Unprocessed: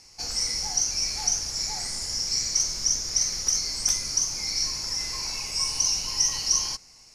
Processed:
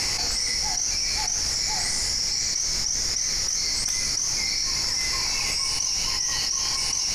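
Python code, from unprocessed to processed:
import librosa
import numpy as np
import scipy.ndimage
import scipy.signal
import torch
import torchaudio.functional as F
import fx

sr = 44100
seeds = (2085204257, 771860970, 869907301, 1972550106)

p1 = fx.peak_eq(x, sr, hz=2000.0, db=6.0, octaves=0.55)
p2 = p1 + fx.echo_single(p1, sr, ms=1126, db=-14.0, dry=0)
p3 = fx.env_flatten(p2, sr, amount_pct=100)
y = p3 * 10.0 ** (-6.0 / 20.0)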